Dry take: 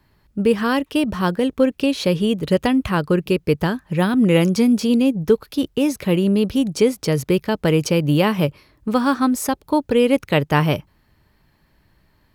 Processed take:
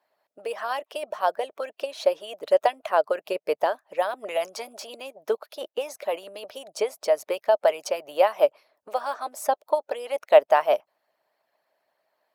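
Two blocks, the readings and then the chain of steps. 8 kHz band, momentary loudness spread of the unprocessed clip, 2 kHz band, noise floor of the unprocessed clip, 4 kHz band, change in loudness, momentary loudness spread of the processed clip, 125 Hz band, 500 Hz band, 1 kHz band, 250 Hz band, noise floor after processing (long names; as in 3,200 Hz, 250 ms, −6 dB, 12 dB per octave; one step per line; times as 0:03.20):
−9.0 dB, 6 LU, −8.0 dB, −61 dBFS, −9.5 dB, −6.5 dB, 14 LU, below −40 dB, −3.0 dB, −0.5 dB, −29.0 dB, −83 dBFS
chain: dynamic equaliser 830 Hz, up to +4 dB, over −29 dBFS, Q 0.93
harmonic and percussive parts rebalanced harmonic −16 dB
high-pass with resonance 630 Hz, resonance Q 5.9
level −8 dB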